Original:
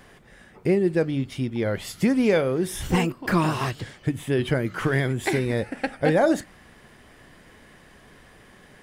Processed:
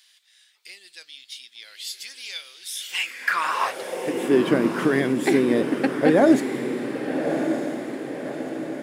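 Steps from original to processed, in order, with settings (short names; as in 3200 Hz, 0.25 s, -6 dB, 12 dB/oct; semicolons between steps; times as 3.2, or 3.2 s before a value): diffused feedback echo 1.206 s, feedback 53%, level -7 dB; high-pass sweep 3900 Hz -> 260 Hz, 2.74–4.43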